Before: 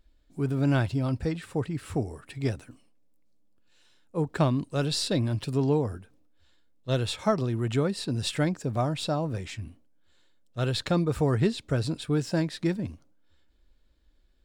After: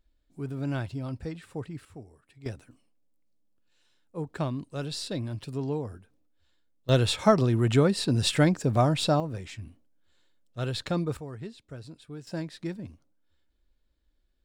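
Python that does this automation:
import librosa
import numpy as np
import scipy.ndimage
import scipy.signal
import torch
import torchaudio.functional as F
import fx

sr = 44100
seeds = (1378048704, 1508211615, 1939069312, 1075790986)

y = fx.gain(x, sr, db=fx.steps((0.0, -7.0), (1.85, -16.5), (2.46, -6.5), (6.89, 4.5), (9.2, -3.5), (11.17, -15.5), (12.27, -7.5)))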